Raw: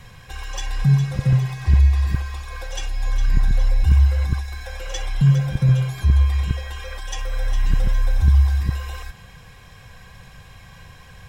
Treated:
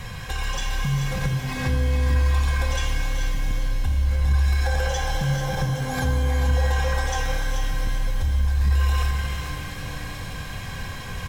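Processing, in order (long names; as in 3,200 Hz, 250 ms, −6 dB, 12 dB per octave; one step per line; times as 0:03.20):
0:04.64–0:07.20: thirty-one-band graphic EQ 500 Hz +6 dB, 800 Hz +12 dB, 1,600 Hz +4 dB, 2,500 Hz −5 dB, 6,300 Hz +4 dB
brickwall limiter −27 dBFS, peak gain reduction 22 dB
single-tap delay 436 ms −7.5 dB
reverb with rising layers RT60 3.2 s, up +12 semitones, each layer −8 dB, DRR 3.5 dB
level +8.5 dB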